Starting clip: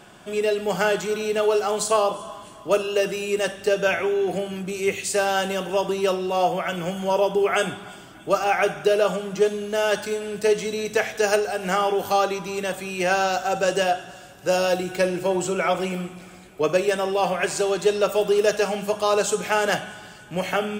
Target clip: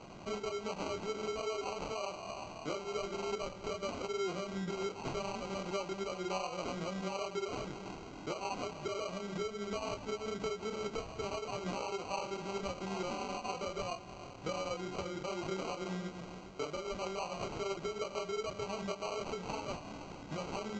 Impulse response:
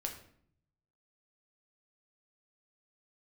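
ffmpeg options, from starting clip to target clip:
-af "alimiter=limit=0.126:level=0:latency=1:release=459,acompressor=threshold=0.0224:ratio=6,flanger=delay=20:depth=7:speed=2.6,acrusher=samples=25:mix=1:aa=0.000001" -ar 16000 -c:a pcm_mulaw

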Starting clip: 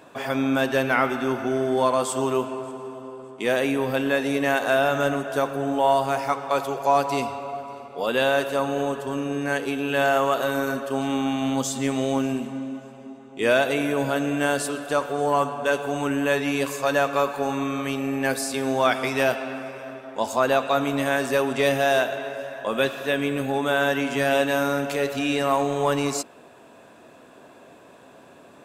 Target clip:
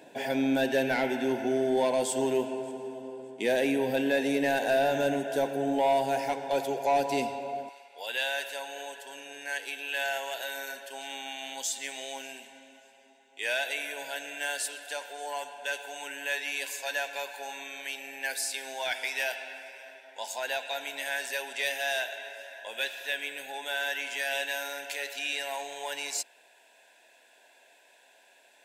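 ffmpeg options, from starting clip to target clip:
-af "asetnsamples=n=441:p=0,asendcmd='7.69 highpass f 1200',highpass=180,asoftclip=type=tanh:threshold=0.2,asuperstop=centerf=1200:order=4:qfactor=1.9,volume=0.794"

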